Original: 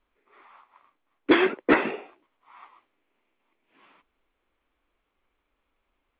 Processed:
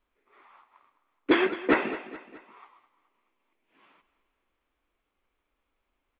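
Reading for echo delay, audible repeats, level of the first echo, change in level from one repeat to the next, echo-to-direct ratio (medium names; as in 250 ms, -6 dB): 212 ms, 3, -15.0 dB, -6.0 dB, -14.0 dB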